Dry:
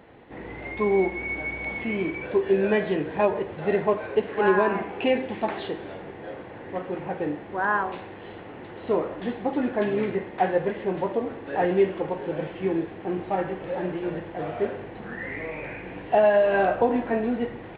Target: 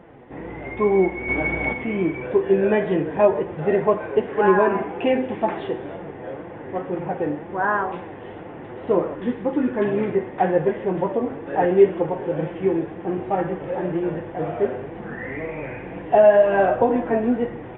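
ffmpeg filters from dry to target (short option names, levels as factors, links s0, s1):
-filter_complex "[0:a]aresample=8000,aresample=44100,asettb=1/sr,asplit=3[s0][s1][s2];[s0]atrim=end=1.284[s3];[s1]atrim=start=1.28:end=1.73,asetpts=PTS-STARTPTS,afade=t=in:d=0.004:c=qsin,afade=t=out:st=0.446:d=0.004:c=qsin,acontrast=71[s4];[s2]atrim=start=1.726[s5];[s3][s4]acrossfade=d=0.004:c1=hsin:c2=qsin[s6];[s6][s5]acrossfade=d=0.004:c1=qsin:c2=hsin,highshelf=f=2500:g=-12,flanger=delay=5.7:depth=2.4:regen=56:speed=2:shape=sinusoidal,asettb=1/sr,asplit=3[s7][s8][s9];[s7]atrim=end=9.154[s10];[s8]atrim=start=9.15:end=9.85,asetpts=PTS-STARTPTS,afade=t=in:d=0.004:c=qsin,afade=t=out:st=0.696:d=0.004:c=qsin,equalizer=f=700:t=o:w=0.31:g=-13.5[s11];[s9]atrim=start=9.846[s12];[s10][s11]acrossfade=d=0.004:c1=hsin:c2=qsin[s13];[s13][s12]acrossfade=d=0.004:c1=qsin:c2=hsin,volume=2.82"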